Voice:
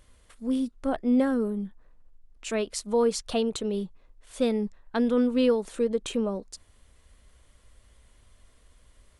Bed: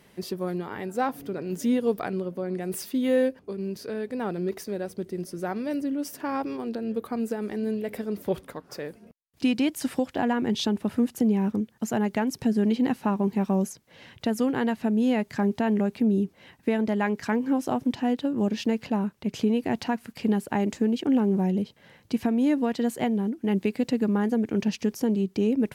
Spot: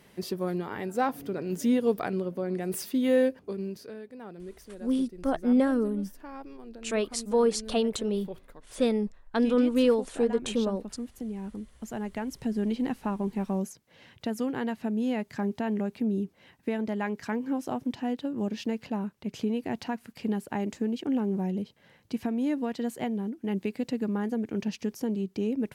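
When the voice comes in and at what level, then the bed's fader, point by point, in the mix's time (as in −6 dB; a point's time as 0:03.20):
4.40 s, 0.0 dB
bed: 0:03.55 −0.5 dB
0:04.11 −13.5 dB
0:11.26 −13.5 dB
0:12.62 −5.5 dB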